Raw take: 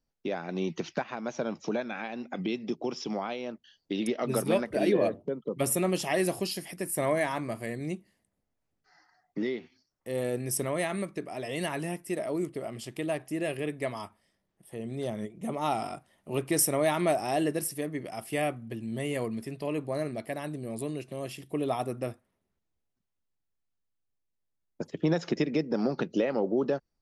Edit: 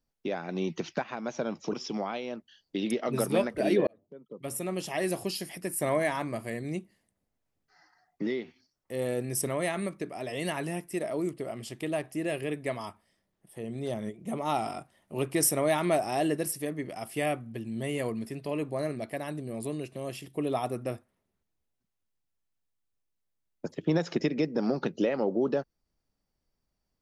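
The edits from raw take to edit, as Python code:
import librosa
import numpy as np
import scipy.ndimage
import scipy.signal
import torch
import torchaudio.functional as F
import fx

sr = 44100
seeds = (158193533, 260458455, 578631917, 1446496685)

y = fx.edit(x, sr, fx.cut(start_s=1.73, length_s=1.16),
    fx.fade_in_span(start_s=5.03, length_s=1.62), tone=tone)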